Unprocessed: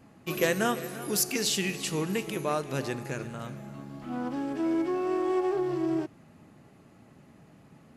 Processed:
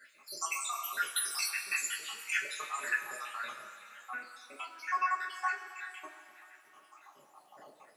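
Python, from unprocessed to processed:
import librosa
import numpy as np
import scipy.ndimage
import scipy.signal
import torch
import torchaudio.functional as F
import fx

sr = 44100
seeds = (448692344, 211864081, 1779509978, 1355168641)

y = fx.spec_dropout(x, sr, seeds[0], share_pct=82)
y = fx.over_compress(y, sr, threshold_db=-35.0, ratio=-0.5)
y = fx.dmg_crackle(y, sr, seeds[1], per_s=480.0, level_db=-65.0)
y = fx.rev_double_slope(y, sr, seeds[2], early_s=0.21, late_s=3.1, knee_db=-18, drr_db=-4.5)
y = fx.filter_sweep_highpass(y, sr, from_hz=1500.0, to_hz=540.0, start_s=6.69, end_s=7.85, q=2.6)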